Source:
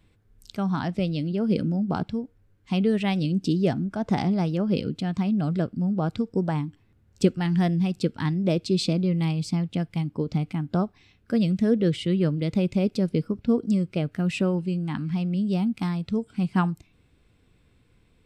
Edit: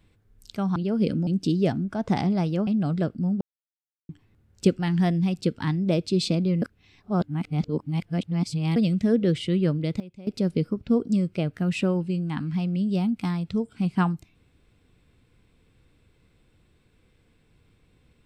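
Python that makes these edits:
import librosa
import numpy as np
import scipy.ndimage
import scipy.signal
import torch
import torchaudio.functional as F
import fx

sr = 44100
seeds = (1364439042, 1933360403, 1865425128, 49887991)

y = fx.edit(x, sr, fx.cut(start_s=0.76, length_s=0.49),
    fx.cut(start_s=1.76, length_s=1.52),
    fx.cut(start_s=4.68, length_s=0.57),
    fx.silence(start_s=5.99, length_s=0.68),
    fx.reverse_span(start_s=9.2, length_s=2.14),
    fx.fade_down_up(start_s=12.27, length_s=0.89, db=-19.5, fade_s=0.31, curve='log'), tone=tone)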